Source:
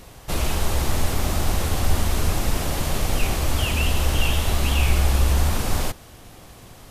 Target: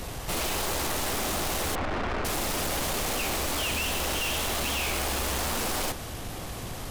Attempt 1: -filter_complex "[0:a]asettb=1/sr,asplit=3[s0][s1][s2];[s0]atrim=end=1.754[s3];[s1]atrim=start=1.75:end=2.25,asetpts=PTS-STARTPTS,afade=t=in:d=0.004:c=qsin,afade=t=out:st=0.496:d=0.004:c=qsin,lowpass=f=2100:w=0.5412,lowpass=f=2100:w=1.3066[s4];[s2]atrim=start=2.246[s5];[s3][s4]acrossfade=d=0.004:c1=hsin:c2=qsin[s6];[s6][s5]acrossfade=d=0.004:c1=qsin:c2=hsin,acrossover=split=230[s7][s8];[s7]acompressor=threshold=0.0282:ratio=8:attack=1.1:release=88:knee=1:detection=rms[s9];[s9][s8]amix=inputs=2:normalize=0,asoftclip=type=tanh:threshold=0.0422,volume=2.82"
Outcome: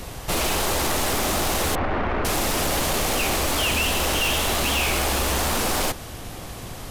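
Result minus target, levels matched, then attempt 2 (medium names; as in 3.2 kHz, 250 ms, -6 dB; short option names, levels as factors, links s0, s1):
saturation: distortion -6 dB
-filter_complex "[0:a]asettb=1/sr,asplit=3[s0][s1][s2];[s0]atrim=end=1.754[s3];[s1]atrim=start=1.75:end=2.25,asetpts=PTS-STARTPTS,afade=t=in:d=0.004:c=qsin,afade=t=out:st=0.496:d=0.004:c=qsin,lowpass=f=2100:w=0.5412,lowpass=f=2100:w=1.3066[s4];[s2]atrim=start=2.246[s5];[s3][s4]acrossfade=d=0.004:c1=hsin:c2=qsin[s6];[s6][s5]acrossfade=d=0.004:c1=qsin:c2=hsin,acrossover=split=230[s7][s8];[s7]acompressor=threshold=0.0282:ratio=8:attack=1.1:release=88:knee=1:detection=rms[s9];[s9][s8]amix=inputs=2:normalize=0,asoftclip=type=tanh:threshold=0.015,volume=2.82"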